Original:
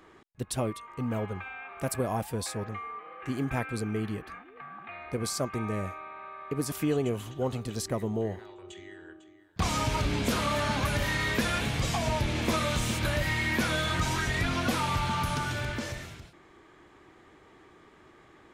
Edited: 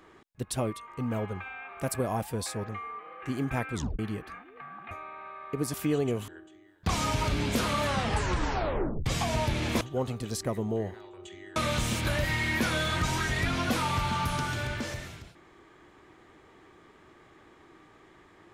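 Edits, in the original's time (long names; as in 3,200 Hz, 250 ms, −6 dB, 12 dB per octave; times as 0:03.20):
0:03.74: tape stop 0.25 s
0:04.91–0:05.89: remove
0:07.26–0:09.01: move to 0:12.54
0:10.58: tape stop 1.21 s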